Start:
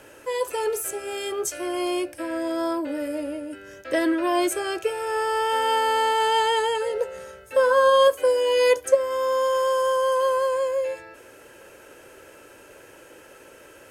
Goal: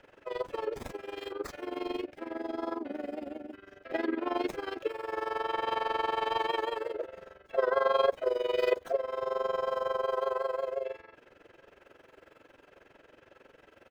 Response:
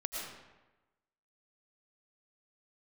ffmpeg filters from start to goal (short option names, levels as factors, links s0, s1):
-filter_complex "[0:a]highshelf=f=6000:g=-3.5,asplit=4[s0][s1][s2][s3];[s1]asetrate=33038,aresample=44100,atempo=1.33484,volume=0.2[s4];[s2]asetrate=35002,aresample=44100,atempo=1.25992,volume=0.2[s5];[s3]asetrate=55563,aresample=44100,atempo=0.793701,volume=0.355[s6];[s0][s4][s5][s6]amix=inputs=4:normalize=0,acrossover=split=170|4900[s7][s8][s9];[s9]acrusher=samples=27:mix=1:aa=0.000001:lfo=1:lforange=27:lforate=0.55[s10];[s7][s8][s10]amix=inputs=3:normalize=0,tremolo=f=22:d=0.857,volume=0.473"